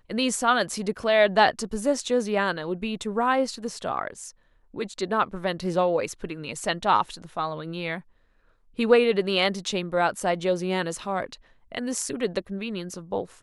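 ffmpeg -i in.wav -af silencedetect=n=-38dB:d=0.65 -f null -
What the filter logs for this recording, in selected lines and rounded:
silence_start: 8.00
silence_end: 8.79 | silence_duration: 0.78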